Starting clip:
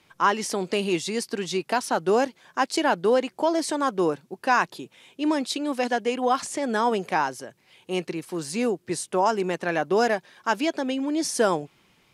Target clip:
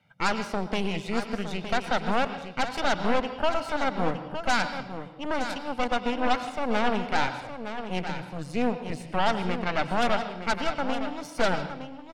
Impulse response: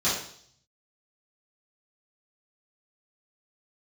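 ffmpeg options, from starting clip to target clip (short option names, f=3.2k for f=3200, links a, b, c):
-filter_complex "[0:a]highpass=f=100:w=0.5412,highpass=f=100:w=1.3066,bass=f=250:g=8,treble=f=4k:g=-14,aecho=1:1:1.4:0.95,aeval=exprs='0.531*(cos(1*acos(clip(val(0)/0.531,-1,1)))-cos(1*PI/2))+0.133*(cos(8*acos(clip(val(0)/0.531,-1,1)))-cos(8*PI/2))':c=same,aecho=1:1:913:0.335,asplit=2[a][b];[1:a]atrim=start_sample=2205,asetrate=33957,aresample=44100,adelay=94[c];[b][c]afir=irnorm=-1:irlink=0,volume=-25.5dB[d];[a][d]amix=inputs=2:normalize=0,volume=-8.5dB"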